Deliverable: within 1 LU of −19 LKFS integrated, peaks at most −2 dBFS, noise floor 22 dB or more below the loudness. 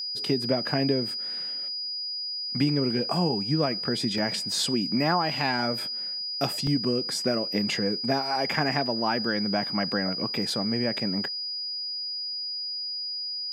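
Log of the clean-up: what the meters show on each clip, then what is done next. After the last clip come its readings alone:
number of dropouts 3; longest dropout 2.3 ms; interfering tone 4,900 Hz; level of the tone −30 dBFS; integrated loudness −26.5 LKFS; sample peak −8.5 dBFS; target loudness −19.0 LKFS
→ repair the gap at 0:04.18/0:06.67/0:10.50, 2.3 ms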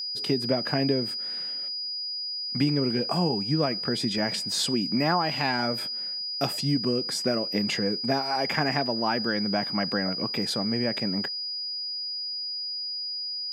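number of dropouts 0; interfering tone 4,900 Hz; level of the tone −30 dBFS
→ notch filter 4,900 Hz, Q 30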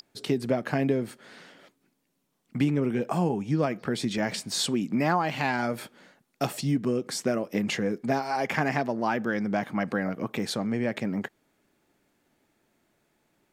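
interfering tone none found; integrated loudness −28.0 LKFS; sample peak −9.0 dBFS; target loudness −19.0 LKFS
→ level +9 dB
brickwall limiter −2 dBFS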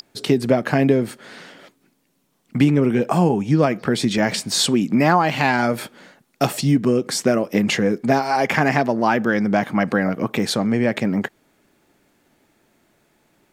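integrated loudness −19.0 LKFS; sample peak −2.0 dBFS; background noise floor −66 dBFS

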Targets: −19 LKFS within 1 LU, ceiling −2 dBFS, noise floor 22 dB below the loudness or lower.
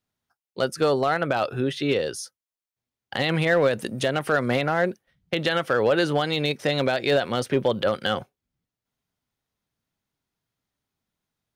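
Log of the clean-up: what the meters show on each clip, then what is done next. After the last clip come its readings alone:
share of clipped samples 0.2%; peaks flattened at −12.5 dBFS; integrated loudness −24.0 LKFS; sample peak −12.5 dBFS; target loudness −19.0 LKFS
→ clipped peaks rebuilt −12.5 dBFS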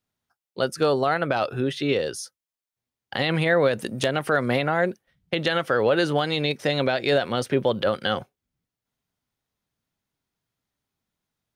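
share of clipped samples 0.0%; integrated loudness −24.0 LKFS; sample peak −3.5 dBFS; target loudness −19.0 LKFS
→ level +5 dB
brickwall limiter −2 dBFS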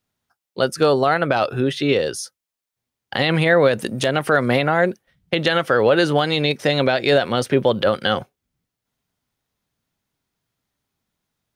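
integrated loudness −19.0 LKFS; sample peak −2.0 dBFS; background noise floor −85 dBFS

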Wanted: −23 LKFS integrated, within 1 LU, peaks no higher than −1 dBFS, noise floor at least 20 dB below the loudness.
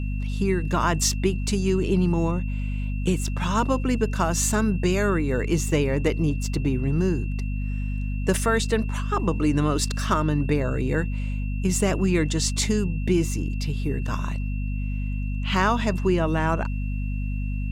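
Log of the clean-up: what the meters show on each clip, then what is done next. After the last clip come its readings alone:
mains hum 50 Hz; hum harmonics up to 250 Hz; level of the hum −24 dBFS; interfering tone 2,700 Hz; level of the tone −43 dBFS; integrated loudness −24.5 LKFS; sample peak −8.5 dBFS; target loudness −23.0 LKFS
→ mains-hum notches 50/100/150/200/250 Hz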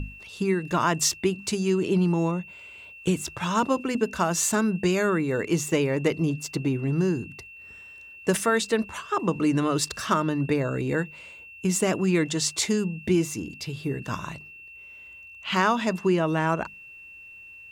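mains hum none found; interfering tone 2,700 Hz; level of the tone −43 dBFS
→ notch filter 2,700 Hz, Q 30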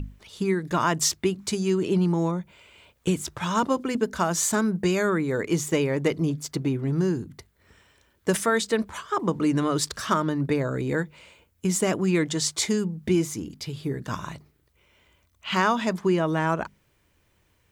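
interfering tone none found; integrated loudness −25.5 LKFS; sample peak −9.0 dBFS; target loudness −23.0 LKFS
→ level +2.5 dB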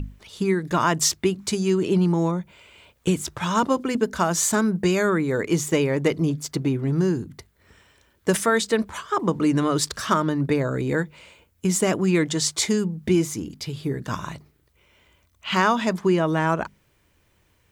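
integrated loudness −23.0 LKFS; sample peak −6.5 dBFS; background noise floor −64 dBFS

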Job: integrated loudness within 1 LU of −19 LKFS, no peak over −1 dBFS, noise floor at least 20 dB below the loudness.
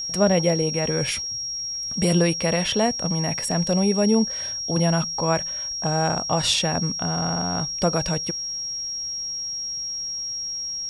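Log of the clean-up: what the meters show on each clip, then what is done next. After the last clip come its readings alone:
interfering tone 5,600 Hz; level of the tone −27 dBFS; integrated loudness −23.0 LKFS; sample peak −6.0 dBFS; target loudness −19.0 LKFS
→ notch filter 5,600 Hz, Q 30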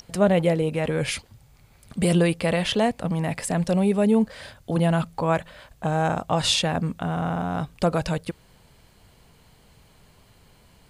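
interfering tone none found; integrated loudness −24.0 LKFS; sample peak −6.5 dBFS; target loudness −19.0 LKFS
→ level +5 dB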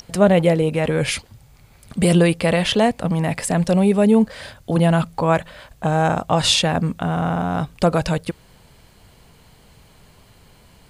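integrated loudness −19.0 LKFS; sample peak −1.5 dBFS; background noise floor −51 dBFS

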